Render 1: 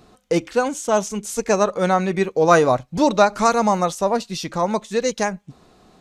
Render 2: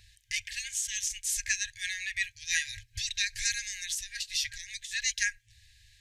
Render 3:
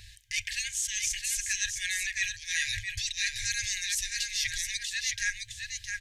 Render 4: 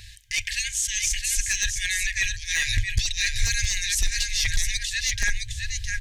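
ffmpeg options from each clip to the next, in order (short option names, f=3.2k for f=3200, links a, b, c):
-af "afftfilt=real='re*(1-between(b*sr/4096,110,1600))':imag='im*(1-between(b*sr/4096,110,1600))':win_size=4096:overlap=0.75"
-af "areverse,acompressor=threshold=-37dB:ratio=6,areverse,aecho=1:1:663:0.531,volume=8.5dB"
-af "asubboost=boost=9:cutoff=95,aeval=exprs='clip(val(0),-1,0.0944)':c=same,volume=5.5dB"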